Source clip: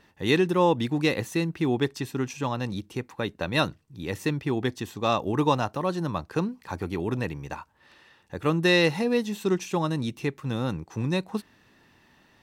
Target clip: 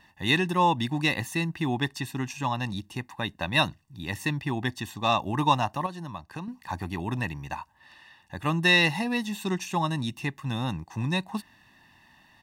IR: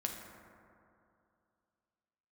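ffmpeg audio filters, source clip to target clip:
-filter_complex "[0:a]lowshelf=frequency=430:gain=-4.5,aecho=1:1:1.1:0.72,asettb=1/sr,asplit=3[link_01][link_02][link_03];[link_01]atrim=end=5.864[link_04];[link_02]atrim=start=5.86:end=6.48,asetpts=PTS-STARTPTS,afade=type=in:duration=0.004:curve=qsin,afade=type=out:start_time=0.616:duration=0.004:curve=qsin,acompressor=threshold=-38dB:ratio=2.5[link_05];[link_03]atrim=start=6.476[link_06];[link_04][link_05]acrossfade=duration=0.004:curve1=hsin:curve2=qsin[link_07];[link_07][link_06]acrossfade=duration=0.004:curve1=qsin:curve2=hsin"

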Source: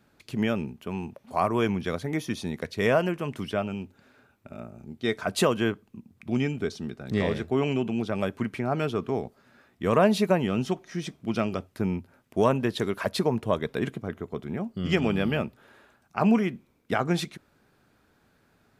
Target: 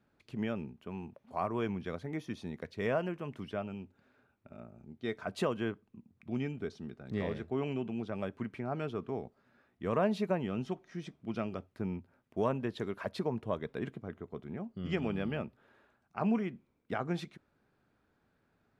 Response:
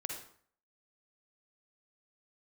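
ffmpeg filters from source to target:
-af "lowpass=frequency=2600:poles=1,volume=-9dB"

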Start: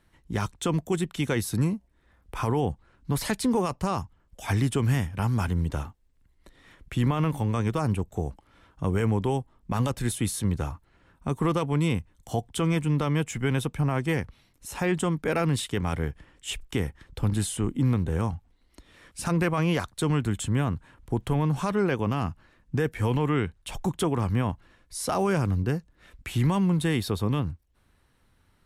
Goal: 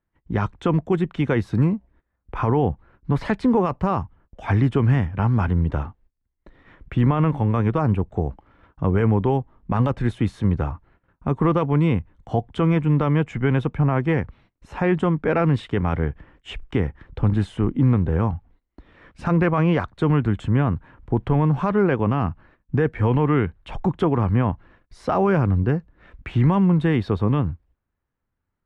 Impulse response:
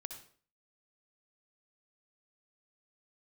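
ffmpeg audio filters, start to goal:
-af "lowpass=1900,agate=range=-21dB:threshold=-57dB:ratio=16:detection=peak,volume=6dB"

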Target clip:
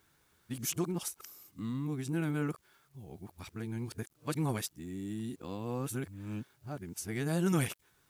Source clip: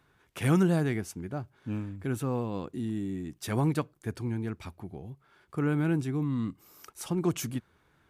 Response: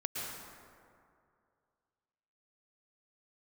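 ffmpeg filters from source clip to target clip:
-af "areverse,acrusher=bits=11:mix=0:aa=0.000001,highshelf=frequency=3500:gain=10.5,volume=-6dB"

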